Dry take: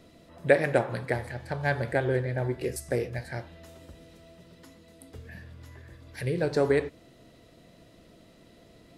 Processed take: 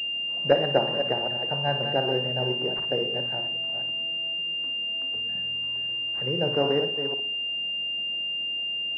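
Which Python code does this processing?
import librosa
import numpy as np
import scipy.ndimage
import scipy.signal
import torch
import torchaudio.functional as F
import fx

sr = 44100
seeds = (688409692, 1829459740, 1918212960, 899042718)

y = fx.reverse_delay(x, sr, ms=255, wet_db=-8)
y = scipy.signal.sosfilt(scipy.signal.butter(4, 130.0, 'highpass', fs=sr, output='sos'), y)
y = fx.peak_eq(y, sr, hz=800.0, db=5.0, octaves=0.59)
y = fx.hum_notches(y, sr, base_hz=60, count=7)
y = fx.room_flutter(y, sr, wall_m=9.8, rt60_s=0.32)
y = fx.pwm(y, sr, carrier_hz=2800.0)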